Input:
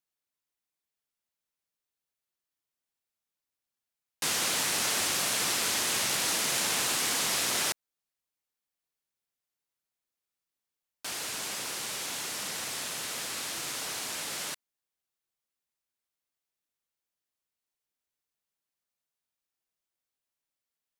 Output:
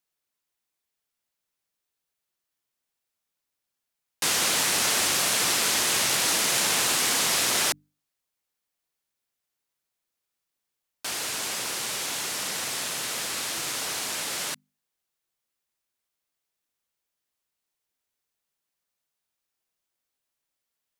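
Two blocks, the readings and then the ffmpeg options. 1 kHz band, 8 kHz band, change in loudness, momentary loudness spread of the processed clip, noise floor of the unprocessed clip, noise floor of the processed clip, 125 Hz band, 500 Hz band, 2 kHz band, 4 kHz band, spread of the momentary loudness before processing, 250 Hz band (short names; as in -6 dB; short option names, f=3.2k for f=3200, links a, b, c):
+5.0 dB, +5.0 dB, +5.0 dB, 8 LU, under -85 dBFS, -84 dBFS, +4.0 dB, +5.0 dB, +5.0 dB, +5.0 dB, 8 LU, +4.5 dB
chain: -af "bandreject=f=50:t=h:w=6,bandreject=f=100:t=h:w=6,bandreject=f=150:t=h:w=6,bandreject=f=200:t=h:w=6,bandreject=f=250:t=h:w=6,bandreject=f=300:t=h:w=6,volume=5dB"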